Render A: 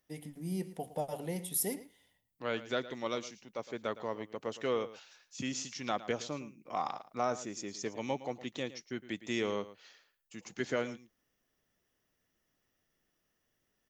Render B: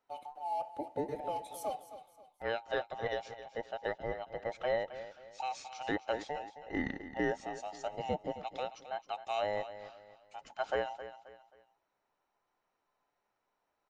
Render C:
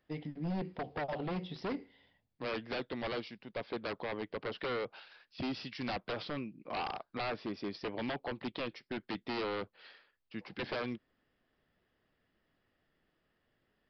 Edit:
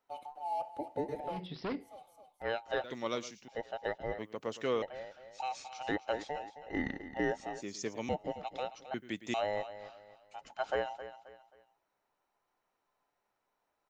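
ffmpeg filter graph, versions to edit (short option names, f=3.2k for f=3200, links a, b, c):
-filter_complex "[0:a]asplit=4[a][b][c][d];[1:a]asplit=6[e][f][g][h][i][j];[e]atrim=end=1.48[k];[2:a]atrim=start=1.24:end=2.01[l];[f]atrim=start=1.77:end=2.842[m];[a]atrim=start=2.838:end=3.482[n];[g]atrim=start=3.478:end=4.192[o];[b]atrim=start=4.188:end=4.822[p];[h]atrim=start=4.818:end=7.622[q];[c]atrim=start=7.618:end=8.092[r];[i]atrim=start=8.088:end=8.942[s];[d]atrim=start=8.938:end=9.342[t];[j]atrim=start=9.338[u];[k][l]acrossfade=d=0.24:c1=tri:c2=tri[v];[v][m]acrossfade=d=0.24:c1=tri:c2=tri[w];[w][n]acrossfade=d=0.004:c1=hsin:c2=hsin[x];[x][o]acrossfade=d=0.004:c1=hsin:c2=hsin[y];[y][p]acrossfade=d=0.004:c1=hsin:c2=hsin[z];[z][q]acrossfade=d=0.004:c1=hsin:c2=hsin[aa];[aa][r]acrossfade=d=0.004:c1=hsin:c2=hsin[ab];[ab][s]acrossfade=d=0.004:c1=hsin:c2=hsin[ac];[ac][t]acrossfade=d=0.004:c1=hsin:c2=hsin[ad];[ad][u]acrossfade=d=0.004:c1=hsin:c2=hsin"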